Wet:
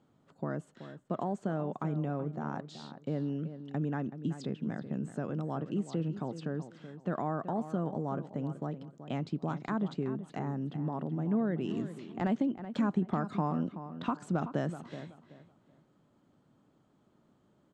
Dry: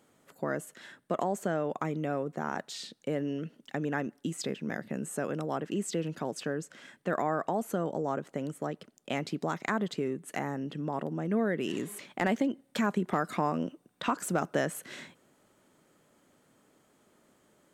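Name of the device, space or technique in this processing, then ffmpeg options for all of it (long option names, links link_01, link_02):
phone in a pocket: -filter_complex "[0:a]lowpass=3300,equalizer=frequency=125:width_type=o:width=1:gain=5,equalizer=frequency=500:width_type=o:width=1:gain=-6,equalizer=frequency=2000:width_type=o:width=1:gain=-8,equalizer=frequency=4000:width_type=o:width=1:gain=4,equalizer=frequency=8000:width_type=o:width=1:gain=9,highshelf=frequency=2000:gain=-10.5,asplit=2[link_01][link_02];[link_02]adelay=378,lowpass=frequency=3100:poles=1,volume=-11.5dB,asplit=2[link_03][link_04];[link_04]adelay=378,lowpass=frequency=3100:poles=1,volume=0.25,asplit=2[link_05][link_06];[link_06]adelay=378,lowpass=frequency=3100:poles=1,volume=0.25[link_07];[link_01][link_03][link_05][link_07]amix=inputs=4:normalize=0"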